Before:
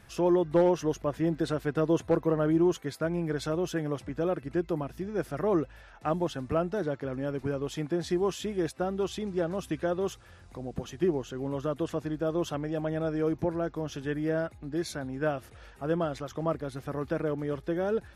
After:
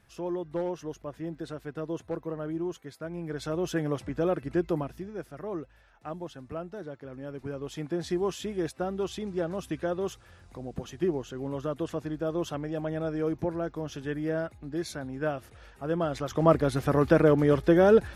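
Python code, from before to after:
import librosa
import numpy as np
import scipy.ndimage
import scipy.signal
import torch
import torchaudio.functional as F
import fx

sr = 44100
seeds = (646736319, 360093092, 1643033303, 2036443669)

y = fx.gain(x, sr, db=fx.line((3.01, -8.5), (3.76, 2.0), (4.78, 2.0), (5.28, -9.0), (7.01, -9.0), (8.01, -1.0), (15.91, -1.0), (16.55, 10.0)))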